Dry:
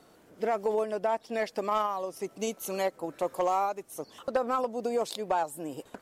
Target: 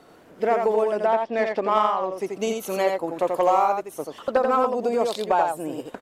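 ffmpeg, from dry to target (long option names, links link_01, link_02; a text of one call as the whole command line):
ffmpeg -i in.wav -filter_complex "[0:a]bass=frequency=250:gain=-3,treble=frequency=4000:gain=-7,asettb=1/sr,asplit=3[link_01][link_02][link_03];[link_01]atrim=end=1.064[link_04];[link_02]atrim=start=1.06:end=2.18,asetpts=PTS-STARTPTS,afade=type=in:duration=0.004:curve=qsin,afade=type=out:start_time=1.116:duration=0.004:curve=qsin,adynamicsmooth=sensitivity=5:basefreq=3300[link_05];[link_03]atrim=start=2.176[link_06];[link_04][link_05]acrossfade=duration=0.004:curve1=hsin:curve2=qsin[link_07];[link_07][link_06]acrossfade=duration=0.004:curve1=qsin:curve2=hsin,aecho=1:1:85:0.596,volume=7dB" out.wav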